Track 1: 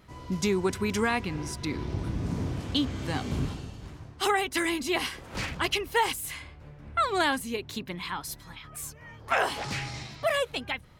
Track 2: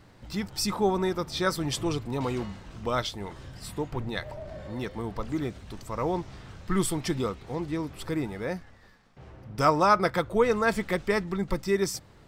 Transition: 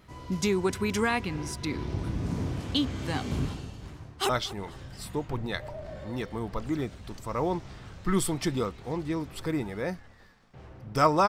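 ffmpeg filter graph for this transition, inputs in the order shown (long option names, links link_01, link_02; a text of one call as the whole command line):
ffmpeg -i cue0.wav -i cue1.wav -filter_complex "[0:a]apad=whole_dur=11.28,atrim=end=11.28,atrim=end=4.292[link_01];[1:a]atrim=start=2.918:end=9.91[link_02];[link_01][link_02]acrossfade=duration=0.004:curve1=hsin:curve2=hsin,asplit=2[link_03][link_04];[link_04]afade=type=in:start_time=3.97:duration=0.01,afade=type=out:start_time=4.29:duration=0.01,aecho=0:1:240|480|720:0.149624|0.0448871|0.0134661[link_05];[link_03][link_05]amix=inputs=2:normalize=0" out.wav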